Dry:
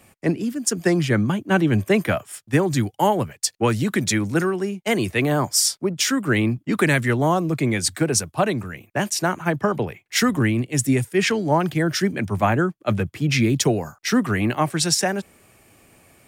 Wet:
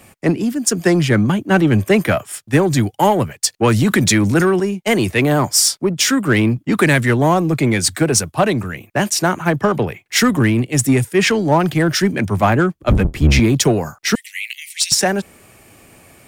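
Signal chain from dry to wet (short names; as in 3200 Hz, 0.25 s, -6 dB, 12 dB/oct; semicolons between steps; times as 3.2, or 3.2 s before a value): 12.74–13.4 octaver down 1 oct, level +4 dB; 14.15–14.92 steep high-pass 2000 Hz 96 dB/oct; in parallel at -3.5 dB: soft clip -23 dBFS, distortion -8 dB; 3.67–4.6 on the sum: fast leveller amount 50%; gain +3 dB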